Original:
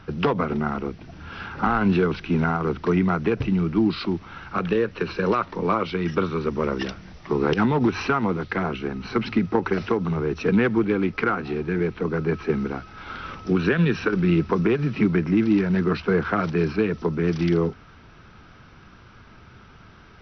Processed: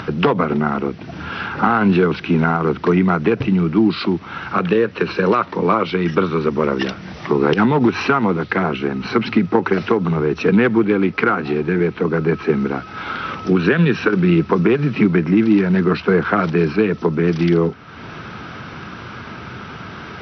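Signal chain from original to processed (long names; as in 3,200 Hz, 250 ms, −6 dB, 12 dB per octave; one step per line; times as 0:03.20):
in parallel at −0.5 dB: downward compressor, threshold −28 dBFS, peak gain reduction 13 dB
on the sum: band-pass filter 120–5,100 Hz
upward compression, threshold −27 dBFS
level +4 dB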